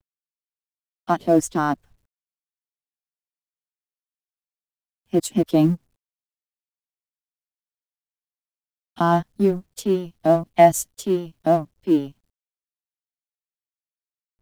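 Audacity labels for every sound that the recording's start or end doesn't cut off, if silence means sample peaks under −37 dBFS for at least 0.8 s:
1.080000	1.740000	sound
5.130000	5.760000	sound
8.980000	12.100000	sound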